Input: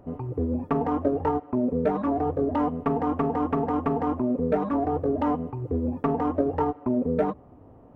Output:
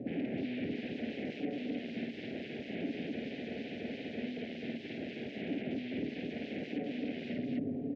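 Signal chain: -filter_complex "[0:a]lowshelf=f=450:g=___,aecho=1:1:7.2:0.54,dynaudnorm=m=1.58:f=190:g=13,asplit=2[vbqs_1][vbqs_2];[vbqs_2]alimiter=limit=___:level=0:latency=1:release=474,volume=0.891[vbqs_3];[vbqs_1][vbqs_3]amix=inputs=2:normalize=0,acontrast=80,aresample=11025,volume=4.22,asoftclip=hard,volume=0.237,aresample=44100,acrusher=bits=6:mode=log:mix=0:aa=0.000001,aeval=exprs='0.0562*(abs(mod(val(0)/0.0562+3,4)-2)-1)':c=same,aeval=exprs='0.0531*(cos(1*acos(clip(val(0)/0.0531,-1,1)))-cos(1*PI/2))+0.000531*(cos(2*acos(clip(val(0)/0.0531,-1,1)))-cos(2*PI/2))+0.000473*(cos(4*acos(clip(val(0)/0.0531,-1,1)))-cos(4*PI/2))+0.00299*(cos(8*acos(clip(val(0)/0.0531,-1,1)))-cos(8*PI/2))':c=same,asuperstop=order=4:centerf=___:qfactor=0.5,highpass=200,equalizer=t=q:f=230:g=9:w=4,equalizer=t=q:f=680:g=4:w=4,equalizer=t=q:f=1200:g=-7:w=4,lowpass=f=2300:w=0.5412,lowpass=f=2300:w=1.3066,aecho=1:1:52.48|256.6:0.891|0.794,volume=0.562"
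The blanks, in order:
4, 0.211, 1100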